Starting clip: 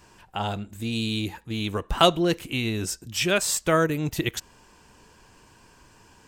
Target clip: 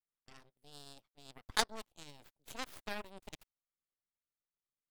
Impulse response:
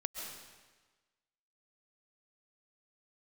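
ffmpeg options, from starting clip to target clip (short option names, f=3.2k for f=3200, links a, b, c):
-af "aeval=exprs='0.75*(cos(1*acos(clip(val(0)/0.75,-1,1)))-cos(1*PI/2))+0.237*(cos(3*acos(clip(val(0)/0.75,-1,1)))-cos(3*PI/2))+0.0376*(cos(4*acos(clip(val(0)/0.75,-1,1)))-cos(4*PI/2))+0.00596*(cos(7*acos(clip(val(0)/0.75,-1,1)))-cos(7*PI/2))+0.0075*(cos(8*acos(clip(val(0)/0.75,-1,1)))-cos(8*PI/2))':c=same,asetrate=56448,aresample=44100,volume=-5dB"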